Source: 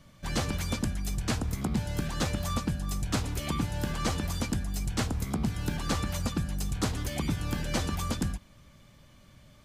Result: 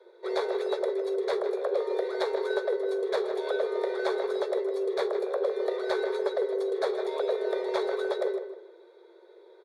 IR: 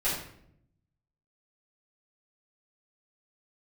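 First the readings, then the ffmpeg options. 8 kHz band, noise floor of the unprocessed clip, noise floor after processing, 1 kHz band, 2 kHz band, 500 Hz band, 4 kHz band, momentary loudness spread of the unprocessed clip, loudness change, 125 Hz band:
under -15 dB, -57 dBFS, -55 dBFS, +1.5 dB, 0.0 dB, +15.5 dB, -4.5 dB, 2 LU, +2.5 dB, under -40 dB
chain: -filter_complex "[0:a]superequalizer=12b=0.282:13b=2.82:16b=3.55,afreqshift=340,equalizer=f=130:w=0.71:g=10.5,adynamicsmooth=sensitivity=0.5:basefreq=2.1k,asplit=2[a][b];[b]adelay=156,lowpass=f=2.8k:p=1,volume=-9dB,asplit=2[c][d];[d]adelay=156,lowpass=f=2.8k:p=1,volume=0.31,asplit=2[e][f];[f]adelay=156,lowpass=f=2.8k:p=1,volume=0.31,asplit=2[g][h];[h]adelay=156,lowpass=f=2.8k:p=1,volume=0.31[i];[a][c][e][g][i]amix=inputs=5:normalize=0"

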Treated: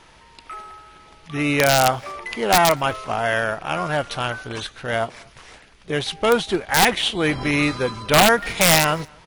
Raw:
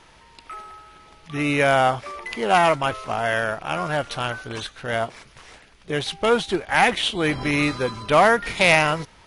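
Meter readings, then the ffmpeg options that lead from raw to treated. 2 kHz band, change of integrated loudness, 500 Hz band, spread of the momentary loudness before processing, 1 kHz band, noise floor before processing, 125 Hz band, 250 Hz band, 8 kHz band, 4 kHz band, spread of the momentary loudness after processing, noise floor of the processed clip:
+0.5 dB, +1.5 dB, +1.0 dB, 15 LU, +0.5 dB, -52 dBFS, +2.5 dB, +2.0 dB, +11.0 dB, +4.5 dB, 15 LU, -50 dBFS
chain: -filter_complex "[0:a]aeval=exprs='(mod(2.37*val(0)+1,2)-1)/2.37':c=same,asplit=2[a][b];[b]adelay=239.1,volume=-29dB,highshelf=f=4k:g=-5.38[c];[a][c]amix=inputs=2:normalize=0,volume=1.5dB"

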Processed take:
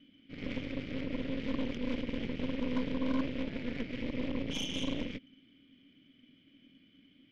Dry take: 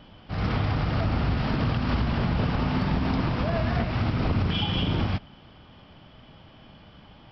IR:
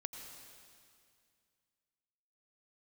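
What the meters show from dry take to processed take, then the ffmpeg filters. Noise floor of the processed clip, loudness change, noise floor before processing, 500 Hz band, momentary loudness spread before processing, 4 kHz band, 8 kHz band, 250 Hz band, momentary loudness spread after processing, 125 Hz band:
-65 dBFS, -10.5 dB, -52 dBFS, -7.5 dB, 2 LU, -8.5 dB, n/a, -6.5 dB, 6 LU, -20.0 dB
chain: -filter_complex "[0:a]asplit=3[a][b][c];[a]bandpass=f=270:t=q:w=8,volume=0dB[d];[b]bandpass=f=2.29k:t=q:w=8,volume=-6dB[e];[c]bandpass=f=3.01k:t=q:w=8,volume=-9dB[f];[d][e][f]amix=inputs=3:normalize=0,aeval=exprs='0.0668*(cos(1*acos(clip(val(0)/0.0668,-1,1)))-cos(1*PI/2))+0.015*(cos(6*acos(clip(val(0)/0.0668,-1,1)))-cos(6*PI/2))':c=same"

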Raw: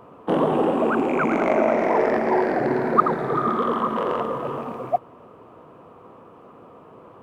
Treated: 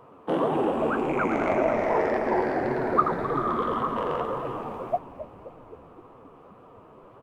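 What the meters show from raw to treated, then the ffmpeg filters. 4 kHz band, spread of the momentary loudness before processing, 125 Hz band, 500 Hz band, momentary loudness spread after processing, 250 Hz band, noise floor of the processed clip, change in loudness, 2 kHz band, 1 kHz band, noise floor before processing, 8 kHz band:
-3.5 dB, 8 LU, -3.0 dB, -4.0 dB, 9 LU, -5.0 dB, -51 dBFS, -4.0 dB, -3.5 dB, -4.0 dB, -48 dBFS, n/a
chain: -filter_complex "[0:a]equalizer=f=200:w=1.3:g=-3,asplit=9[a][b][c][d][e][f][g][h][i];[b]adelay=262,afreqshift=-87,volume=-13dB[j];[c]adelay=524,afreqshift=-174,volume=-16.7dB[k];[d]adelay=786,afreqshift=-261,volume=-20.5dB[l];[e]adelay=1048,afreqshift=-348,volume=-24.2dB[m];[f]adelay=1310,afreqshift=-435,volume=-28dB[n];[g]adelay=1572,afreqshift=-522,volume=-31.7dB[o];[h]adelay=1834,afreqshift=-609,volume=-35.5dB[p];[i]adelay=2096,afreqshift=-696,volume=-39.2dB[q];[a][j][k][l][m][n][o][p][q]amix=inputs=9:normalize=0,flanger=delay=5.9:depth=8.6:regen=42:speed=1.8:shape=triangular"

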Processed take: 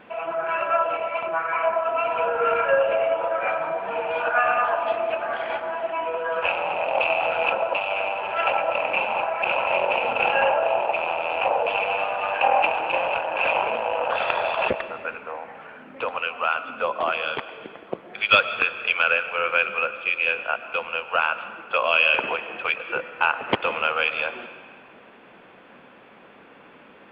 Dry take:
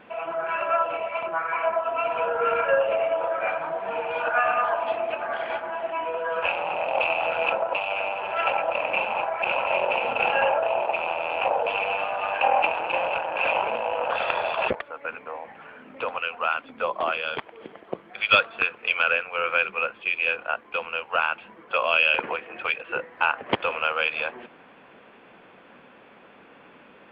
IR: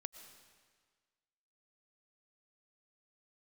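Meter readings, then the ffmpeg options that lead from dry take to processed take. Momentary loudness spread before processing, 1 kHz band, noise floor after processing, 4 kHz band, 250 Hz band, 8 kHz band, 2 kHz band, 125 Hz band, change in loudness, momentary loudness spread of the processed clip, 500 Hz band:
8 LU, +2.0 dB, -49 dBFS, +2.0 dB, +2.0 dB, n/a, +2.0 dB, +1.5 dB, +2.0 dB, 8 LU, +2.0 dB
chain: -filter_complex "[0:a]asplit=2[a][b];[1:a]atrim=start_sample=2205[c];[b][c]afir=irnorm=-1:irlink=0,volume=12.5dB[d];[a][d]amix=inputs=2:normalize=0,volume=-9.5dB"

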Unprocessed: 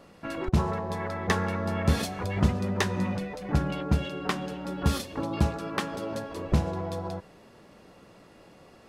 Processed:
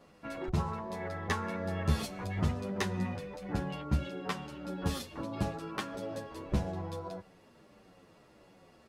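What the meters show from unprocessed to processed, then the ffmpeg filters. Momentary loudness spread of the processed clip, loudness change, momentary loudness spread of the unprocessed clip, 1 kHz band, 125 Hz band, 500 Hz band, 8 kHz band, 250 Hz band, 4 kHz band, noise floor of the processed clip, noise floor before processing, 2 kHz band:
8 LU, -6.5 dB, 8 LU, -6.5 dB, -6.5 dB, -6.5 dB, -6.5 dB, -7.0 dB, -6.5 dB, -61 dBFS, -54 dBFS, -6.5 dB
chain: -filter_complex "[0:a]asplit=2[a][b];[b]adelay=9.3,afreqshift=-1.6[c];[a][c]amix=inputs=2:normalize=1,volume=-3.5dB"

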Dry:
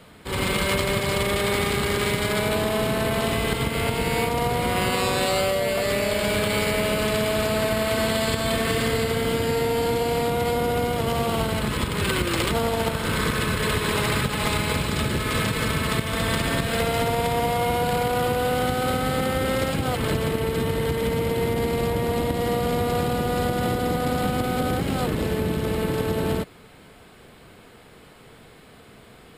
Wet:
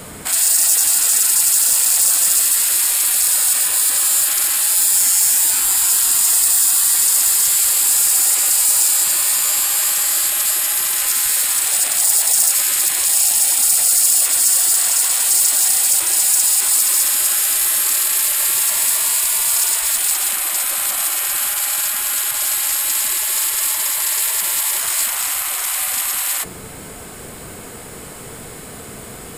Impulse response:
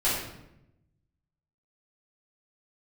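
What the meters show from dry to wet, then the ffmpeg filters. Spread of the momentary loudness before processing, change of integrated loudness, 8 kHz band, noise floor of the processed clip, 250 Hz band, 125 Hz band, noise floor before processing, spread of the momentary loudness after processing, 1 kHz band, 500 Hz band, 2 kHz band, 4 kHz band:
2 LU, +10.5 dB, +24.0 dB, -34 dBFS, under -15 dB, under -15 dB, -49 dBFS, 7 LU, -5.0 dB, -17.0 dB, 0.0 dB, +6.5 dB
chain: -filter_complex "[0:a]asplit=2[a][b];[1:a]atrim=start_sample=2205[c];[b][c]afir=irnorm=-1:irlink=0,volume=-35.5dB[d];[a][d]amix=inputs=2:normalize=0,afftfilt=real='re*lt(hypot(re,im),0.0447)':imag='im*lt(hypot(re,im),0.0447)':win_size=1024:overlap=0.75,aeval=exprs='0.119*sin(PI/2*2.24*val(0)/0.119)':c=same,highshelf=f=5.2k:t=q:w=1.5:g=10.5,volume=2dB"

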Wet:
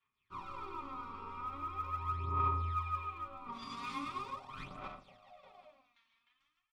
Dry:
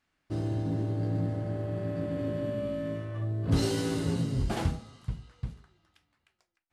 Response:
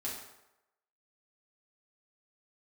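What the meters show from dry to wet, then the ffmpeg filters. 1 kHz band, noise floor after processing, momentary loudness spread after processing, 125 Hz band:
+7.0 dB, -84 dBFS, 20 LU, -14.0 dB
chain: -filter_complex "[0:a]aecho=1:1:110.8|151.6:0.316|0.447[a];[1:a]atrim=start_sample=2205,afade=t=out:st=0.3:d=0.01,atrim=end_sample=13671[b];[a][b]afir=irnorm=-1:irlink=0,asubboost=boost=8.5:cutoff=59,alimiter=limit=-24dB:level=0:latency=1:release=18,asplit=3[c][d][e];[c]bandpass=f=530:t=q:w=8,volume=0dB[f];[d]bandpass=f=1.84k:t=q:w=8,volume=-6dB[g];[e]bandpass=f=2.48k:t=q:w=8,volume=-9dB[h];[f][g][h]amix=inputs=3:normalize=0,aeval=exprs='val(0)*sin(2*PI*670*n/s)':c=same,aphaser=in_gain=1:out_gain=1:delay=4.4:decay=0.66:speed=0.41:type=sinusoidal,tiltshelf=f=790:g=-4.5,dynaudnorm=f=160:g=3:m=3dB,volume=2.5dB"

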